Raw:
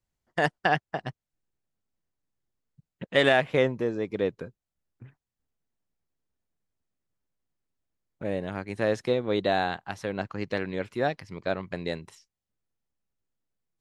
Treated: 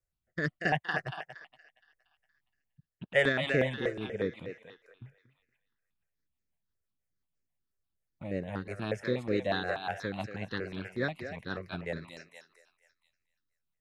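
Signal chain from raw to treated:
feedback echo with a high-pass in the loop 234 ms, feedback 46%, high-pass 640 Hz, level −4 dB
rotating-speaker cabinet horn 0.75 Hz, later 6 Hz, at 0:02.84
step-sequenced phaser 8.3 Hz 910–3,400 Hz

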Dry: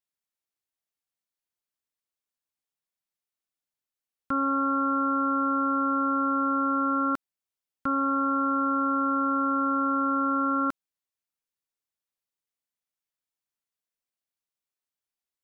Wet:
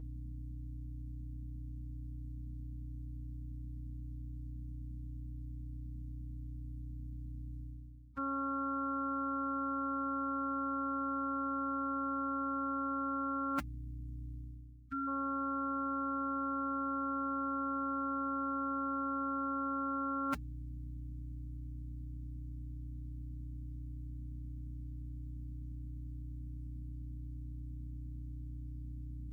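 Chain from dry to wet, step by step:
mains hum 60 Hz, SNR 19 dB
reversed playback
downward compressor 8 to 1, threshold −40 dBFS, peak gain reduction 16.5 dB
reversed playback
phase-vocoder stretch with locked phases 1.9×
time-frequency box erased 0:14.47–0:15.08, 340–1,200 Hz
level +5.5 dB

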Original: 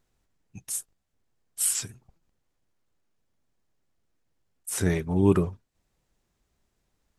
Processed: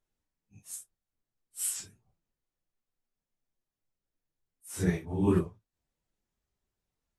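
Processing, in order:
random phases in long frames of 100 ms
expander for the loud parts 1.5 to 1, over −34 dBFS
level −3.5 dB

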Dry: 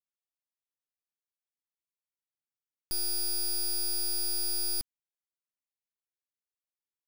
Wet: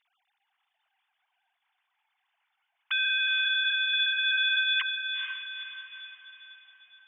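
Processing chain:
three sine waves on the formant tracks
on a send: feedback delay with all-pass diffusion 468 ms, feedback 48%, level −6.5 dB
on the sum: level +3 dB

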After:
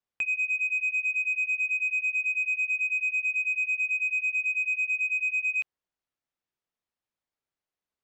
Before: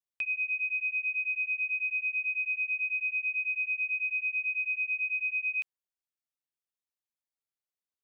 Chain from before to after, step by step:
high-shelf EQ 2,400 Hz −7.5 dB
in parallel at +0.5 dB: output level in coarse steps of 12 dB
on the sum: soft clipping −26 dBFS, distortion −20 dB
high-frequency loss of the air 69 metres
level +5.5 dB

